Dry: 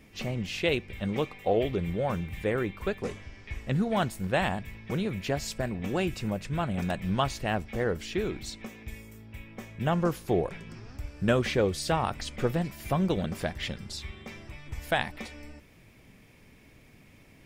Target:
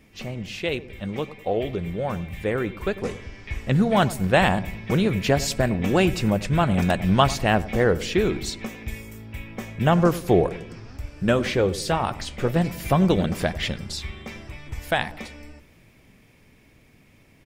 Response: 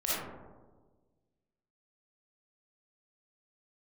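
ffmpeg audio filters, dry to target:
-filter_complex "[0:a]dynaudnorm=f=390:g=17:m=11.5dB,asplit=3[a][b][c];[a]afade=t=out:st=10.47:d=0.02[d];[b]flanger=delay=3.2:depth=8.8:regen=-69:speed=1.5:shape=sinusoidal,afade=t=in:st=10.47:d=0.02,afade=t=out:st=12.55:d=0.02[e];[c]afade=t=in:st=12.55:d=0.02[f];[d][e][f]amix=inputs=3:normalize=0,asplit=2[g][h];[h]adelay=98,lowpass=f=810:p=1,volume=-14.5dB,asplit=2[i][j];[j]adelay=98,lowpass=f=810:p=1,volume=0.5,asplit=2[k][l];[l]adelay=98,lowpass=f=810:p=1,volume=0.5,asplit=2[m][n];[n]adelay=98,lowpass=f=810:p=1,volume=0.5,asplit=2[o][p];[p]adelay=98,lowpass=f=810:p=1,volume=0.5[q];[g][i][k][m][o][q]amix=inputs=6:normalize=0"

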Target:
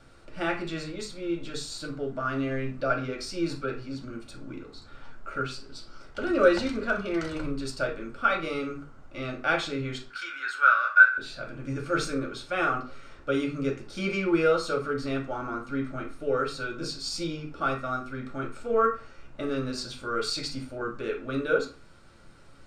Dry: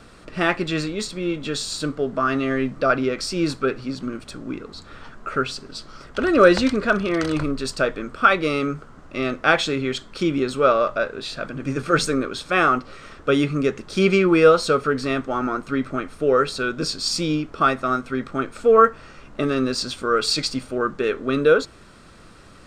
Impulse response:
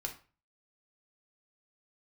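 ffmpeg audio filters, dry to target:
-filter_complex "[0:a]asettb=1/sr,asplit=3[a][b][c];[a]atrim=end=10.104[d];[b]atrim=start=10.1:end=11.18,asetpts=PTS-STARTPTS,afade=t=in:d=0.004:c=qsin,afade=t=out:st=1.076:d=0.004:c=qsin,highpass=f=1.5k:t=q:w=13[e];[c]atrim=start=11.176[f];[d][e]acrossfade=d=0.004:c1=hsin:c2=qsin[g];[g][f]acrossfade=d=0.004:c1=qsin:c2=hsin[h];[1:a]atrim=start_sample=2205[i];[h][i]afir=irnorm=-1:irlink=0,volume=-8.5dB"

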